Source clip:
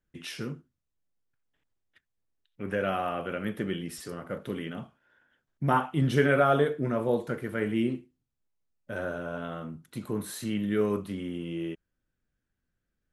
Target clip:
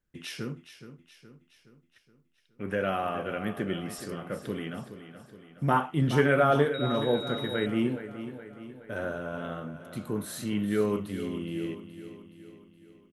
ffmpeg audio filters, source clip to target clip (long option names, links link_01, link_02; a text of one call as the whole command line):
ffmpeg -i in.wav -filter_complex "[0:a]aecho=1:1:420|840|1260|1680|2100|2520:0.251|0.133|0.0706|0.0374|0.0198|0.0105,asettb=1/sr,asplit=3[link_01][link_02][link_03];[link_01]atrim=end=6.744[link_04];[link_02]atrim=start=6.74:end=7.66,asetpts=PTS-STARTPTS,afade=type=in:duration=0.004:curve=qsin,afade=type=out:start_time=0.916:duration=0.004:curve=qsin,aeval=exprs='val(0)+0.0126*sin(2*PI*3800*n/s)':channel_layout=same[link_05];[link_03]atrim=start=7.656[link_06];[link_04][link_05]acrossfade=duration=0.004:curve1=hsin:curve2=qsin[link_07];[link_07][link_06]acrossfade=duration=0.004:curve1=qsin:curve2=hsin" out.wav